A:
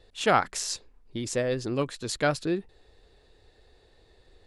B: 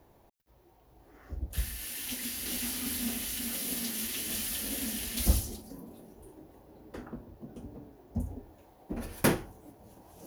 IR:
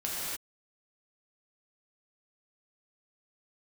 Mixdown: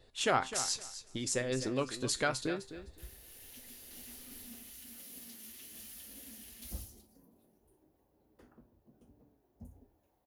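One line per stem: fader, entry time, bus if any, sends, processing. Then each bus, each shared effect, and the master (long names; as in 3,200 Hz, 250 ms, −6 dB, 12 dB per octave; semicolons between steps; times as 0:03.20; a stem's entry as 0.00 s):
−3.0 dB, 0.00 s, no send, echo send −12 dB, harmonic and percussive parts rebalanced percussive +8 dB; downward compressor 1.5 to 1, threshold −25 dBFS, peak gain reduction 6 dB; tuned comb filter 130 Hz, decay 0.25 s, harmonics all, mix 60%
−18.0 dB, 1.45 s, no send, no echo send, no processing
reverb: not used
echo: repeating echo 256 ms, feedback 17%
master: high-shelf EQ 8,300 Hz +5 dB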